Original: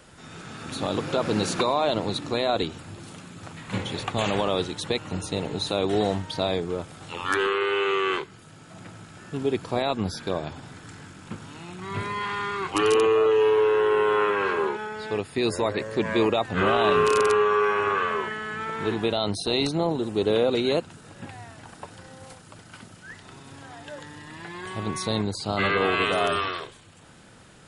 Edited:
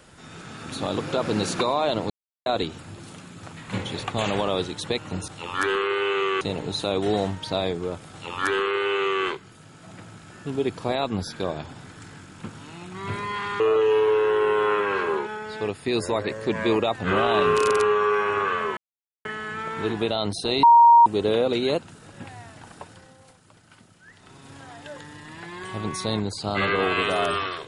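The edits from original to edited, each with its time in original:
2.1–2.46 mute
6.99–8.12 copy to 5.28
12.47–13.1 cut
18.27 insert silence 0.48 s
19.65–20.08 bleep 938 Hz -9 dBFS
21.78–23.56 dip -8 dB, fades 0.44 s linear

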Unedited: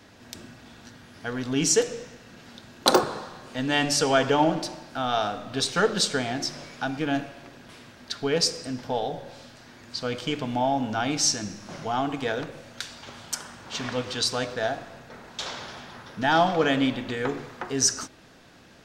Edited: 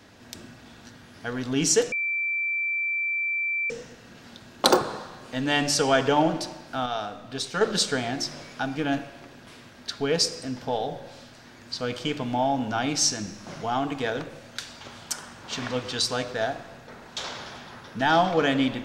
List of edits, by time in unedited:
1.92 add tone 2340 Hz -24 dBFS 1.78 s
5.08–5.83 gain -5 dB

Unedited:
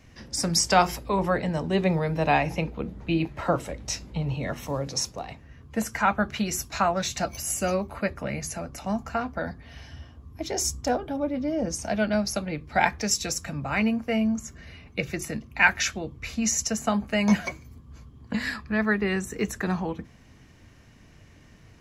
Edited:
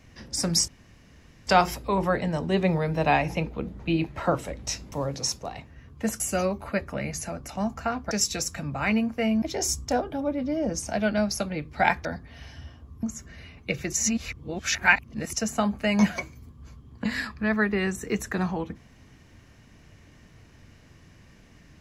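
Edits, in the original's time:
0.68 insert room tone 0.79 s
4.13–4.65 cut
5.93–7.49 cut
9.4–10.38 swap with 13.01–14.32
15.22–16.62 reverse

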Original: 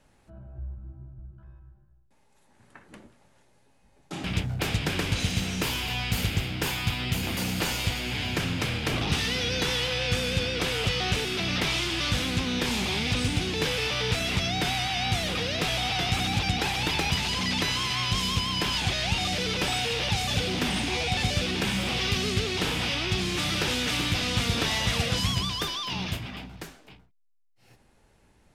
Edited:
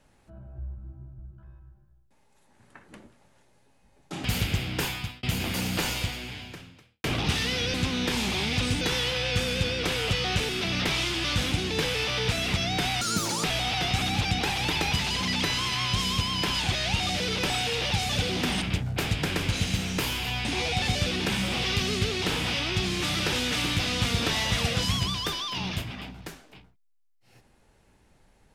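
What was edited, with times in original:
4.25–6.08 move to 20.8
6.66–7.06 fade out linear
7.74–8.87 fade out quadratic
12.28–13.35 move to 9.57
14.84–15.62 speed 182%

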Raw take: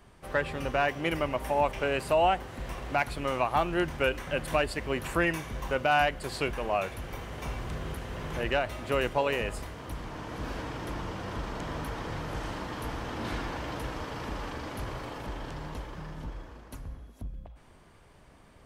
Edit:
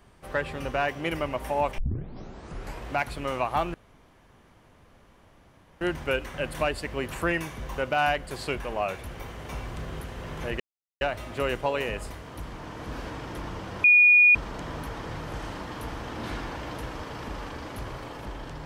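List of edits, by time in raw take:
1.78 tape start 1.11 s
3.74 insert room tone 2.07 s
8.53 insert silence 0.41 s
11.36 add tone 2450 Hz -13 dBFS 0.51 s

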